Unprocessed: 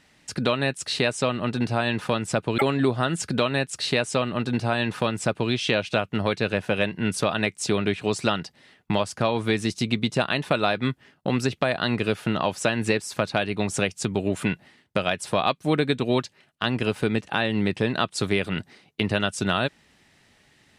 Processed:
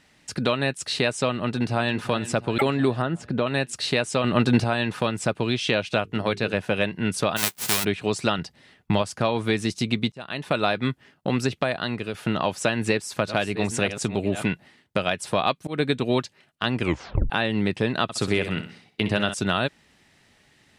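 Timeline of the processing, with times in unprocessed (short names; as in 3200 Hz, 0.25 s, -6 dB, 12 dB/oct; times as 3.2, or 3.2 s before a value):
1.34–1.99 echo throw 0.35 s, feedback 60%, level -14.5 dB
3.02–3.47 LPF 1100 Hz 6 dB/oct
4.24–4.64 gain +6.5 dB
6.03–6.54 notches 50/100/150/200/250/300/350/400/450 Hz
7.36–7.83 spectral whitening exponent 0.1
8.38–9.02 low shelf 110 Hz +9.5 dB
10.12–10.59 fade in
11.53–12.14 fade out, to -8 dB
12.65–14.46 reverse delay 0.616 s, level -11 dB
15.32–15.8 auto swell 0.163 s
16.8 tape stop 0.50 s
18.03–19.34 feedback echo 63 ms, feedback 40%, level -10 dB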